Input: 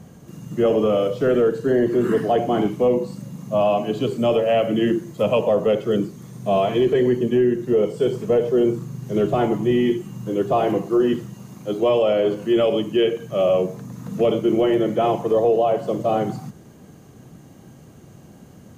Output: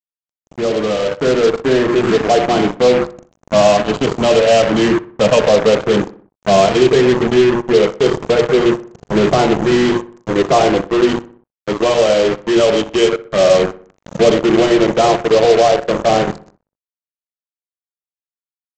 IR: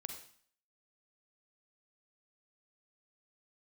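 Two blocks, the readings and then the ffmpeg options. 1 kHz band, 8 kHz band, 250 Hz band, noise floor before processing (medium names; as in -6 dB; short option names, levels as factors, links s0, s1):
+8.5 dB, no reading, +5.0 dB, -46 dBFS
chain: -filter_complex "[0:a]bandreject=f=60:t=h:w=6,bandreject=f=120:t=h:w=6,bandreject=f=180:t=h:w=6,bandreject=f=240:t=h:w=6,bandreject=f=300:t=h:w=6,bandreject=f=360:t=h:w=6,bandreject=f=420:t=h:w=6,bandreject=f=480:t=h:w=6,bandreject=f=540:t=h:w=6,bandreject=f=600:t=h:w=6,adynamicequalizer=threshold=0.0282:dfrequency=210:dqfactor=1.1:tfrequency=210:tqfactor=1.1:attack=5:release=100:ratio=0.375:range=1.5:mode=cutabove:tftype=bell,aresample=16000,acrusher=bits=3:mix=0:aa=0.5,aresample=44100,dynaudnorm=f=180:g=13:m=3.35,asplit=2[s0][s1];[s1]adelay=62,lowpass=f=2200:p=1,volume=0.141,asplit=2[s2][s3];[s3]adelay=62,lowpass=f=2200:p=1,volume=0.51,asplit=2[s4][s5];[s5]adelay=62,lowpass=f=2200:p=1,volume=0.51,asplit=2[s6][s7];[s7]adelay=62,lowpass=f=2200:p=1,volume=0.51[s8];[s0][s2][s4][s6][s8]amix=inputs=5:normalize=0"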